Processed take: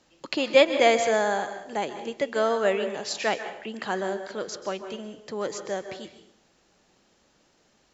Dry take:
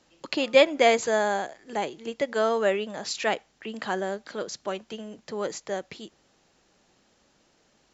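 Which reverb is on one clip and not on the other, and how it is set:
dense smooth reverb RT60 0.65 s, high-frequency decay 0.8×, pre-delay 120 ms, DRR 9 dB

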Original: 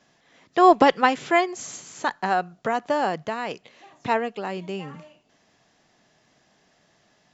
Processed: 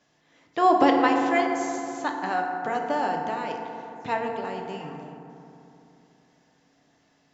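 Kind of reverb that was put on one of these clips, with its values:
feedback delay network reverb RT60 3 s, low-frequency decay 1.2×, high-frequency decay 0.35×, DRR 1.5 dB
level −5.5 dB

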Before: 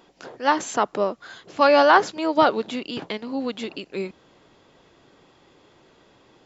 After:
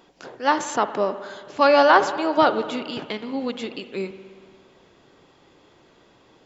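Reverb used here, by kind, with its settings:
spring reverb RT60 1.8 s, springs 57 ms, chirp 40 ms, DRR 11 dB

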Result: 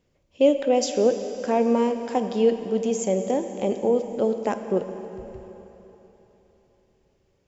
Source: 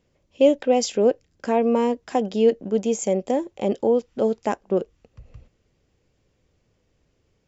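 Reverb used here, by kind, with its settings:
dense smooth reverb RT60 3.7 s, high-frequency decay 0.95×, DRR 7.5 dB
level −2 dB

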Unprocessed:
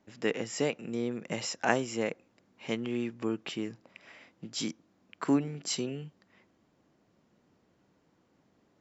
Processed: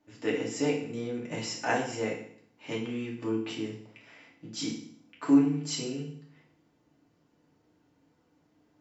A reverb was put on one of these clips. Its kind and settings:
feedback delay network reverb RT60 0.59 s, low-frequency decay 1.25×, high-frequency decay 1×, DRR −4 dB
level −6 dB

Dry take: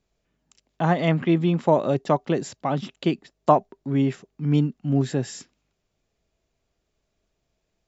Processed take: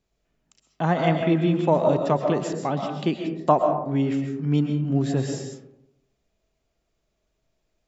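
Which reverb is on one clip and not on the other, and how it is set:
comb and all-pass reverb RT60 0.82 s, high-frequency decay 0.35×, pre-delay 90 ms, DRR 3.5 dB
level −1.5 dB

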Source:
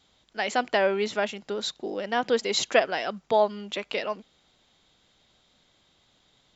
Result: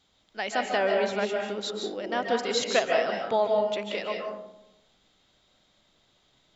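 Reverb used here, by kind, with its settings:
comb and all-pass reverb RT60 0.87 s, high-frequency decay 0.35×, pre-delay 110 ms, DRR 1 dB
level −3.5 dB

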